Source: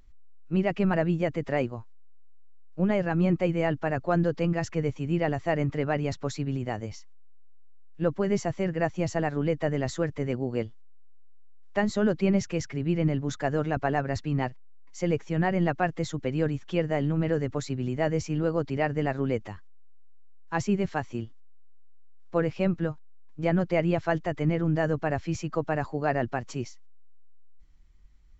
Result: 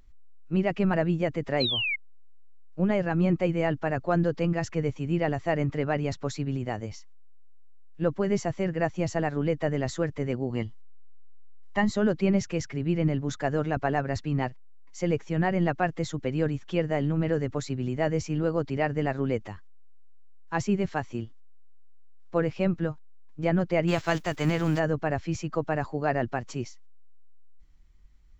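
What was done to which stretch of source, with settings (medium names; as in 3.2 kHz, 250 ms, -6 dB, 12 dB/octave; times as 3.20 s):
1.60–1.96 s: painted sound fall 2.1–4.3 kHz -28 dBFS
10.50–11.91 s: comb 1 ms, depth 58%
23.87–24.78 s: formants flattened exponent 0.6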